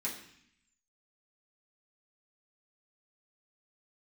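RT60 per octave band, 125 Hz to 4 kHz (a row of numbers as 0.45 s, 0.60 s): 0.95 s, 0.95 s, 0.60 s, 0.70 s, 0.90 s, 0.85 s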